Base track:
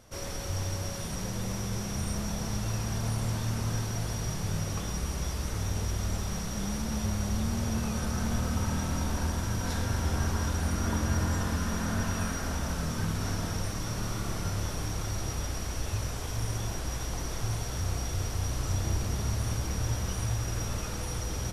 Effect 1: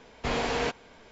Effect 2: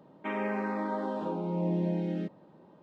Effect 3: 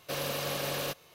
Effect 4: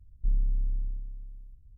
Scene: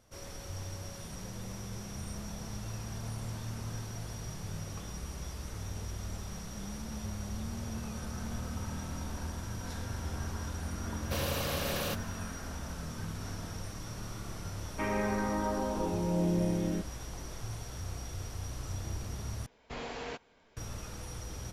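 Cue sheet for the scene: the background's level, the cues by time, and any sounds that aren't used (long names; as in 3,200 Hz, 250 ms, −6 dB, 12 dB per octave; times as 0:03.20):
base track −8.5 dB
0:11.02: mix in 3 −1.5 dB
0:14.54: mix in 2
0:19.46: overwrite with 1 −12 dB
not used: 4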